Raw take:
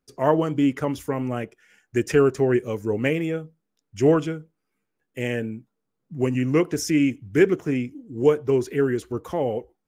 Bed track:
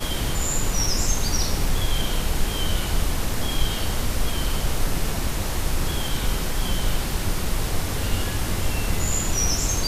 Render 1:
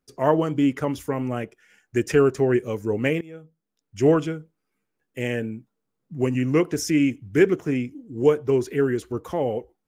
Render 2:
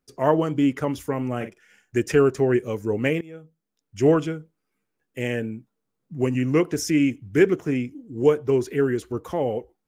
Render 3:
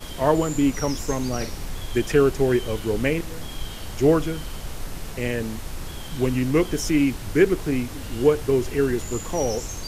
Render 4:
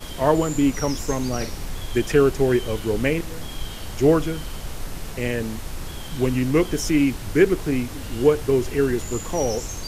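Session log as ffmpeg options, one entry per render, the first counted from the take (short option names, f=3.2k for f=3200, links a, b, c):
-filter_complex "[0:a]asplit=2[a][b];[a]atrim=end=3.21,asetpts=PTS-STARTPTS,afade=t=out:st=3.206:d=0.004:c=hsin:silence=0.0841395[c];[b]atrim=start=3.21,asetpts=PTS-STARTPTS,afade=t=in:d=0.85:silence=0.0841395[d];[c][d]concat=n=2:v=0:a=1"
-filter_complex "[0:a]asettb=1/sr,asplit=3[a][b][c];[a]atrim=end=1.364[d];[b]atrim=start=1.36:end=1.99,asetpts=PTS-STARTPTS,afade=t=in:d=0.004:c=qsin,afade=t=out:st=0.626:d=0.004:c=qsin,asplit=2[e][f];[f]adelay=48,volume=-9dB[g];[e][g]amix=inputs=2:normalize=0,atrim=end_sample=27783[h];[c]atrim=start=1.986[i];[d][h]acrossfade=d=0.004:c1=hsin:c2=qsin[j];[j][i]acrossfade=d=0.004:c1=qsin:c2=hsin"
-filter_complex "[1:a]volume=-9.5dB[a];[0:a][a]amix=inputs=2:normalize=0"
-af "volume=1dB"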